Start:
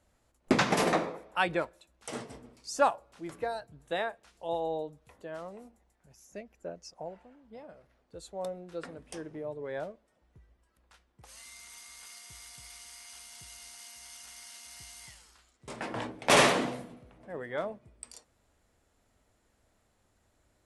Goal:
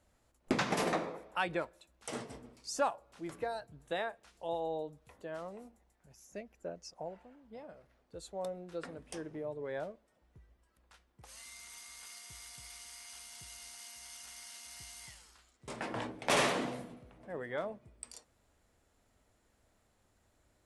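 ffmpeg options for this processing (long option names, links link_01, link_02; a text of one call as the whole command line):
ffmpeg -i in.wav -filter_complex "[0:a]asplit=2[link_01][link_02];[link_02]volume=17.5dB,asoftclip=hard,volume=-17.5dB,volume=-10.5dB[link_03];[link_01][link_03]amix=inputs=2:normalize=0,acompressor=threshold=-33dB:ratio=1.5,volume=-3.5dB" out.wav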